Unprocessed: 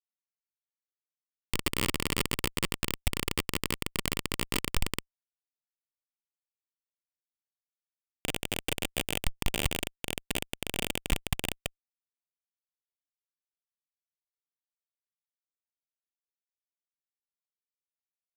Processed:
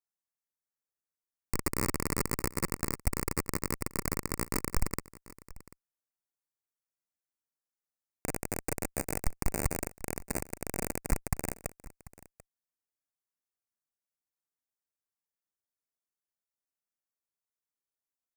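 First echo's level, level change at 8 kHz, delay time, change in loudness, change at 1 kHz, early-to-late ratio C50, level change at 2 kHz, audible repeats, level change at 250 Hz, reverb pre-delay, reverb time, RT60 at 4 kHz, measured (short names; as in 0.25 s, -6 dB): -20.0 dB, 0.0 dB, 0.74 s, -2.0 dB, 0.0 dB, none, -6.0 dB, 1, 0.0 dB, none, none, none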